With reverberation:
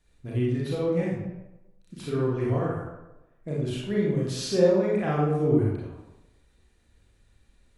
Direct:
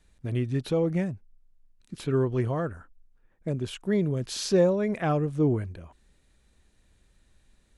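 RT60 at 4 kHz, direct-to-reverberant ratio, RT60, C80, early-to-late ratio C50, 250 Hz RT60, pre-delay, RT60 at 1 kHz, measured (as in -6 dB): 0.65 s, -5.5 dB, 1.0 s, 3.0 dB, -0.5 dB, 0.95 s, 31 ms, 1.0 s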